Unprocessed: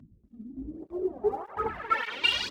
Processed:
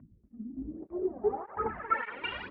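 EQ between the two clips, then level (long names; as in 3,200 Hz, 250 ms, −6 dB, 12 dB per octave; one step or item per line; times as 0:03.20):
low-pass filter 2,000 Hz 24 dB per octave
dynamic equaliser 220 Hz, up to +5 dB, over −52 dBFS, Q 3.3
−2.0 dB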